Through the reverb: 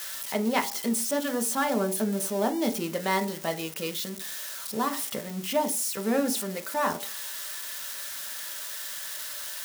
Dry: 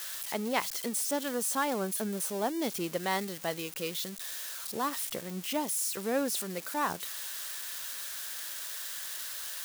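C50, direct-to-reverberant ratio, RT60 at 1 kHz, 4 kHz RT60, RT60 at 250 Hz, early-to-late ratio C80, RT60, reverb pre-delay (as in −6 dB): 14.5 dB, 4.0 dB, 0.45 s, 0.15 s, 0.40 s, 19.0 dB, 0.45 s, 3 ms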